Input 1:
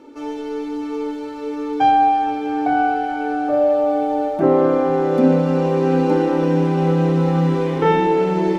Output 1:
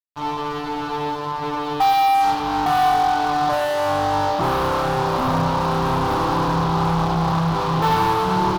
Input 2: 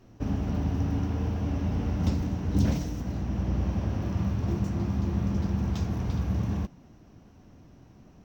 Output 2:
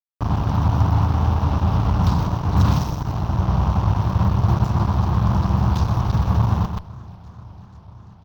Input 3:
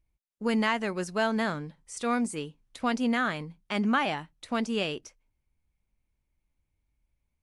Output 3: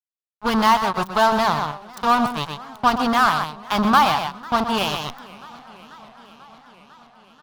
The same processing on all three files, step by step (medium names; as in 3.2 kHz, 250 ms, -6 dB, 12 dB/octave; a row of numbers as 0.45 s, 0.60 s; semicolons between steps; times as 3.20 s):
fuzz box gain 26 dB, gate -32 dBFS; delay 124 ms -10 dB; reverse; upward compressor, threshold -21 dBFS; reverse; graphic EQ 125/250/500/1000/2000/4000/8000 Hz +7/-7/-8/+11/-9/+4/-9 dB; modulated delay 493 ms, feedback 74%, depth 210 cents, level -22.5 dB; normalise loudness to -20 LUFS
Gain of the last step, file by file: -3.5 dB, 0.0 dB, +3.0 dB